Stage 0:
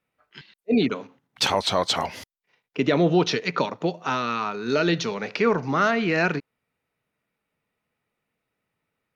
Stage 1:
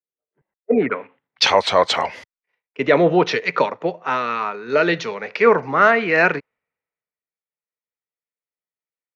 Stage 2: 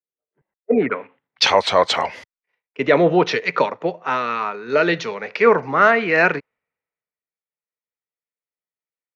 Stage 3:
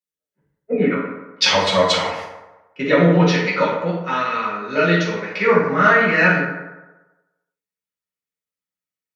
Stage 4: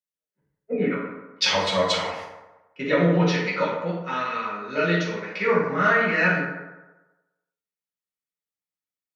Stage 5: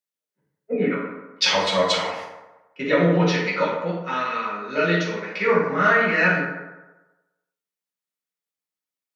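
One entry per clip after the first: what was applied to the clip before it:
octave-band graphic EQ 500/1,000/2,000/8,000 Hz +9/+6/+11/−10 dB; low-pass filter sweep 400 Hz → 7,900 Hz, 0:00.19–0:01.60; multiband upward and downward expander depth 70%; level −3 dB
no processing that can be heard
parametric band 730 Hz −8 dB 2 octaves; convolution reverb RT60 1.1 s, pre-delay 3 ms, DRR −7.5 dB; level −3.5 dB
hum removal 53.43 Hz, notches 34; level −5.5 dB
high-pass filter 140 Hz; level +2 dB

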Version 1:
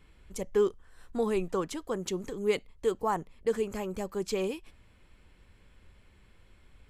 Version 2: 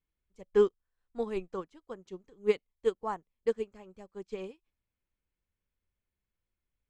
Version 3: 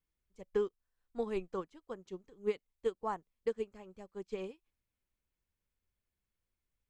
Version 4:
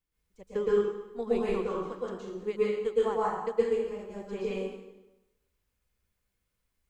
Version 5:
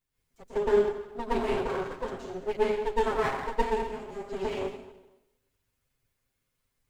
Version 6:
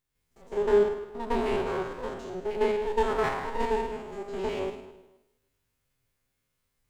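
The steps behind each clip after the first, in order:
low-pass filter 5,700 Hz 12 dB per octave; expander for the loud parts 2.5 to 1, over −43 dBFS; level +3 dB
downward compressor 6 to 1, threshold −28 dBFS, peak gain reduction 9.5 dB; level −1 dB
dense smooth reverb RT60 0.97 s, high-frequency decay 0.85×, pre-delay 105 ms, DRR −8 dB
lower of the sound and its delayed copy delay 7.5 ms; level +3 dB
spectrum averaged block by block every 50 ms; level +2 dB

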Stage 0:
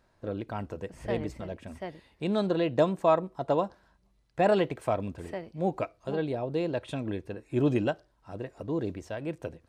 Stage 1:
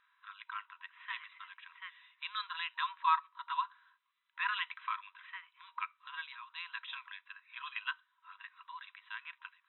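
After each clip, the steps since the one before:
brick-wall band-pass 950–4,000 Hz
level +2 dB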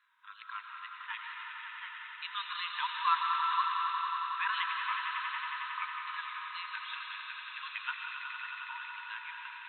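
tape wow and flutter 90 cents
echo that builds up and dies away 91 ms, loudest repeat 5, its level −10 dB
convolution reverb RT60 2.6 s, pre-delay 85 ms, DRR 3 dB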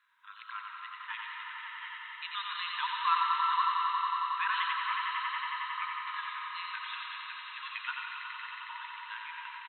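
single-tap delay 90 ms −4.5 dB

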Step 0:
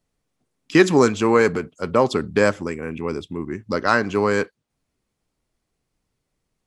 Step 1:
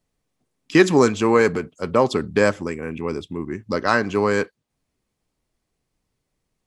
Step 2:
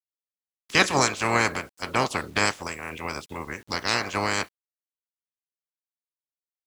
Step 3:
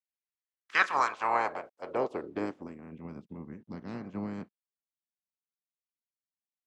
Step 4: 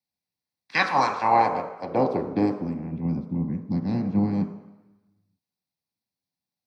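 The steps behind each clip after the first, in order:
notch filter 1,400 Hz, Q 21
ceiling on every frequency bin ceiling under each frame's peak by 26 dB; bit reduction 8 bits; level −6 dB
band-pass filter sweep 2,100 Hz → 200 Hz, 0:00.34–0:02.94; level +1 dB
convolution reverb RT60 1.0 s, pre-delay 3 ms, DRR 4.5 dB

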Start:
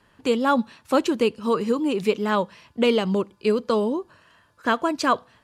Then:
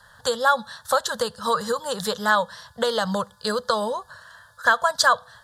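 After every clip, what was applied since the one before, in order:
drawn EQ curve 130 Hz 0 dB, 210 Hz −7 dB, 320 Hz −29 dB, 490 Hz +8 dB, 1,100 Hz +5 dB, 1,700 Hz +10 dB, 2,400 Hz −25 dB, 3,500 Hz +8 dB, 5,700 Hz +5 dB, 8,500 Hz +8 dB
downward compressor 3 to 1, threshold −18 dBFS, peak gain reduction 8 dB
parametric band 460 Hz −9.5 dB 1.6 octaves
level +5.5 dB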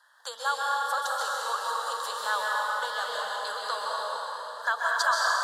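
four-pole ladder high-pass 600 Hz, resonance 20%
dense smooth reverb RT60 4.3 s, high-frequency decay 0.8×, pre-delay 115 ms, DRR −5 dB
level −5.5 dB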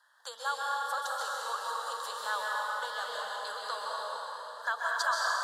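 floating-point word with a short mantissa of 8 bits
level −5 dB

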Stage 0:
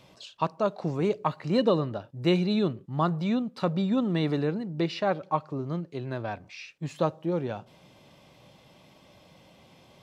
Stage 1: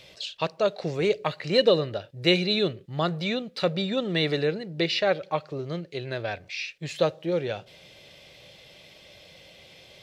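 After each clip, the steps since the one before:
graphic EQ with 10 bands 125 Hz −4 dB, 250 Hz −11 dB, 500 Hz +5 dB, 1,000 Hz −12 dB, 2,000 Hz +6 dB, 4,000 Hz +6 dB
level +5 dB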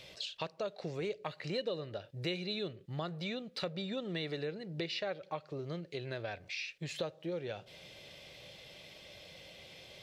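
downward compressor 3 to 1, threshold −36 dBFS, peak gain reduction 16 dB
level −2.5 dB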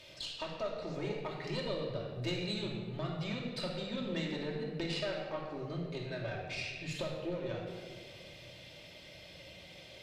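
tube saturation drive 28 dB, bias 0.65
convolution reverb RT60 1.6 s, pre-delay 3 ms, DRR −2.5 dB

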